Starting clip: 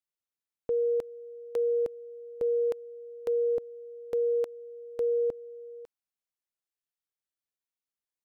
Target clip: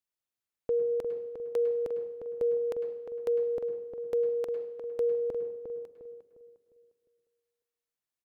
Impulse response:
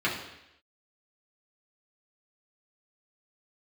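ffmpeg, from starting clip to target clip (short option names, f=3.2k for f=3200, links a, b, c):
-filter_complex "[0:a]asplit=2[a][b];[b]adelay=354,lowpass=f=1.1k:p=1,volume=-6dB,asplit=2[c][d];[d]adelay=354,lowpass=f=1.1k:p=1,volume=0.41,asplit=2[e][f];[f]adelay=354,lowpass=f=1.1k:p=1,volume=0.41,asplit=2[g][h];[h]adelay=354,lowpass=f=1.1k:p=1,volume=0.41,asplit=2[i][j];[j]adelay=354,lowpass=f=1.1k:p=1,volume=0.41[k];[a][c][e][g][i][k]amix=inputs=6:normalize=0,asplit=2[l][m];[1:a]atrim=start_sample=2205,adelay=101[n];[m][n]afir=irnorm=-1:irlink=0,volume=-19dB[o];[l][o]amix=inputs=2:normalize=0"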